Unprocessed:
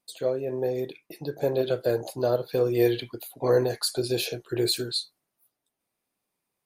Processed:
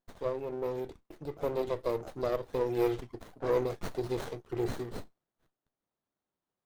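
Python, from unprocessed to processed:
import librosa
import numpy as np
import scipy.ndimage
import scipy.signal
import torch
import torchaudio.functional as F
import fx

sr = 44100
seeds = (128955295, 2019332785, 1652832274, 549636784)

y = fx.running_max(x, sr, window=17)
y = y * 10.0 ** (-6.0 / 20.0)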